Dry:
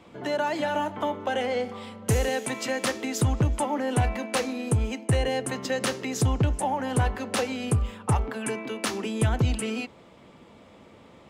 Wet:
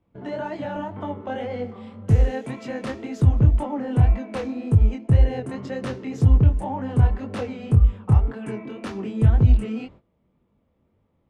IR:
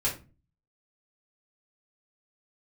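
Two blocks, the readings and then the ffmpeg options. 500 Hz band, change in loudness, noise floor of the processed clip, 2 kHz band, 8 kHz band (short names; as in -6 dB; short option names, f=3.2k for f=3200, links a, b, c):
-2.5 dB, +5.0 dB, -68 dBFS, -7.0 dB, under -15 dB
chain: -af "agate=range=-18dB:threshold=-45dB:ratio=16:detection=peak,aemphasis=mode=reproduction:type=riaa,flanger=delay=19.5:depth=7.3:speed=1.9,volume=-2dB"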